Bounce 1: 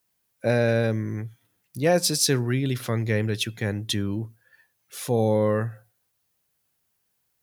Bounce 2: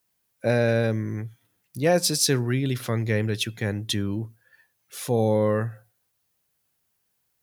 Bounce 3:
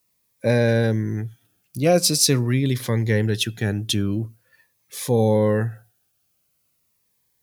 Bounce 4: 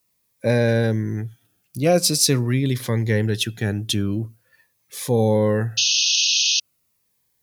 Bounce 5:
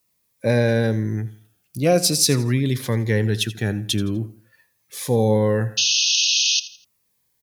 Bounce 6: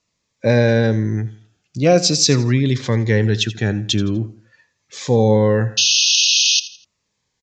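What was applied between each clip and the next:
no processing that can be heard
phaser whose notches keep moving one way falling 0.44 Hz; level +4.5 dB
sound drawn into the spectrogram noise, 0:05.77–0:06.60, 2,500–6,600 Hz −19 dBFS
repeating echo 83 ms, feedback 35%, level −16.5 dB
downsampling to 16,000 Hz; level +4 dB

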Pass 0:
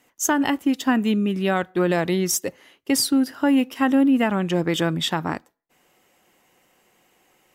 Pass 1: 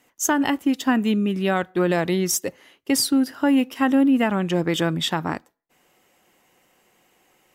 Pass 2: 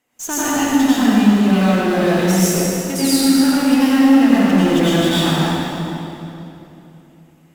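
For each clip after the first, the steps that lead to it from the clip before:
no processing that can be heard
in parallel at −9.5 dB: fuzz pedal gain 41 dB, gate −46 dBFS; on the sum: convolution reverb RT60 3.0 s, pre-delay 81 ms, DRR −10.5 dB; level −10 dB

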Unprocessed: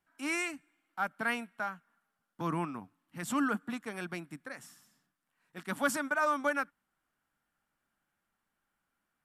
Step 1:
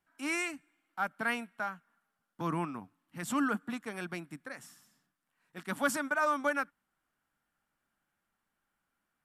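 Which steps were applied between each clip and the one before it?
no processing that can be heard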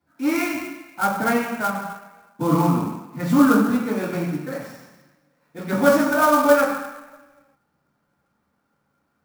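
convolution reverb RT60 1.0 s, pre-delay 3 ms, DRR −10.5 dB
converter with an unsteady clock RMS 0.026 ms
level −4.5 dB

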